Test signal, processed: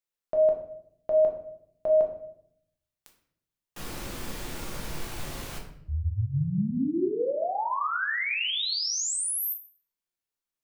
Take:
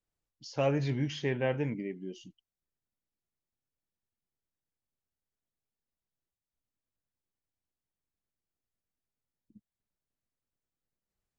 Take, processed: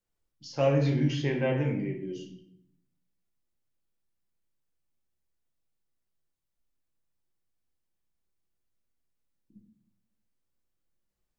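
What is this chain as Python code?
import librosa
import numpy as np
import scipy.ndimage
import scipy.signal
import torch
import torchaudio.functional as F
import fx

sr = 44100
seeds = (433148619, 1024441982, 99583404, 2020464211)

y = fx.room_shoebox(x, sr, seeds[0], volume_m3=140.0, walls='mixed', distance_m=0.84)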